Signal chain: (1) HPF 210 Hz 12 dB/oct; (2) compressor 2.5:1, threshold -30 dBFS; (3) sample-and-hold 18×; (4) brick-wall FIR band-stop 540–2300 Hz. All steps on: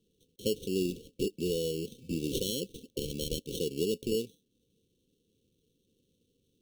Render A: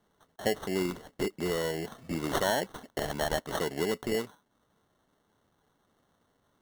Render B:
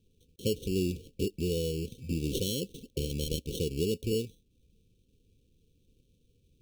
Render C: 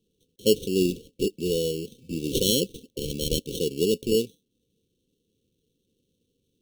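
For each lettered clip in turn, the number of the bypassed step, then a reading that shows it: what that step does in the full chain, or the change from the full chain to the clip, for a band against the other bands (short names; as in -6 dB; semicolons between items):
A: 4, 2 kHz band +15.5 dB; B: 1, 125 Hz band +6.5 dB; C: 2, mean gain reduction 5.5 dB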